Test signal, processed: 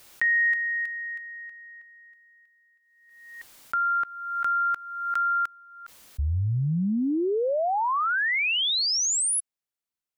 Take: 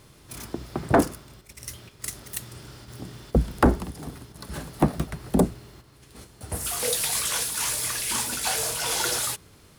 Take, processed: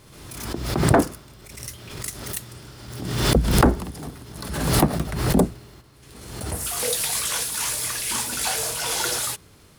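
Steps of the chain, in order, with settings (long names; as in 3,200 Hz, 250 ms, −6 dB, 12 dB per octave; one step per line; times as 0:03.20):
background raised ahead of every attack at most 48 dB per second
level +1 dB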